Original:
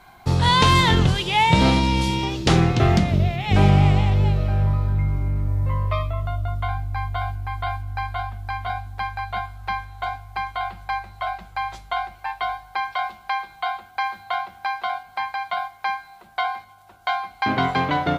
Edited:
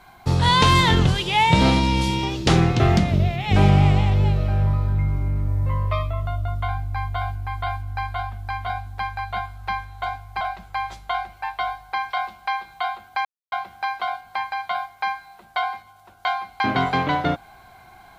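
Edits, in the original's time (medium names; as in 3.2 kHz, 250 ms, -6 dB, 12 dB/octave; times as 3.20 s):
10.41–11.23 s: delete
14.07–14.34 s: mute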